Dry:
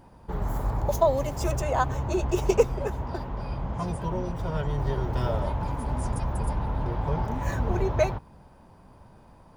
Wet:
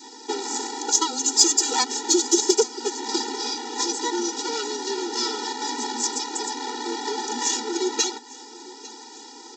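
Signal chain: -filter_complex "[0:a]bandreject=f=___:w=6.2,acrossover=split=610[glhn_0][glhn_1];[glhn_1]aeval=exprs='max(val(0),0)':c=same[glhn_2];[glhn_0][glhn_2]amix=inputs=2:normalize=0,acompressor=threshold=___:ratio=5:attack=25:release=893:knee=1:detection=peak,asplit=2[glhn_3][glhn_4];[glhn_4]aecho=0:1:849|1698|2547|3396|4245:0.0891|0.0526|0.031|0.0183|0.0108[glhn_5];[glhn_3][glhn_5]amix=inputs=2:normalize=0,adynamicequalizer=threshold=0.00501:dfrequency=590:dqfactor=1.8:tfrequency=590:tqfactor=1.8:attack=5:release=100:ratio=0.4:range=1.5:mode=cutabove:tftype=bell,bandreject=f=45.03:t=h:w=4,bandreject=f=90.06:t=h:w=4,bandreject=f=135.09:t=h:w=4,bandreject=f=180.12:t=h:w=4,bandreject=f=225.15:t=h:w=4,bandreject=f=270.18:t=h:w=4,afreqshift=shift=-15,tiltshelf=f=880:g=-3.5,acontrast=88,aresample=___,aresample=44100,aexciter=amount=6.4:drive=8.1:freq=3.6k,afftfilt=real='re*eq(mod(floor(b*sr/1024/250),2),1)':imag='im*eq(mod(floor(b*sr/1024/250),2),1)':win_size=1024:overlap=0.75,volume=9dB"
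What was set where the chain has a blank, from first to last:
2.8k, -30dB, 16000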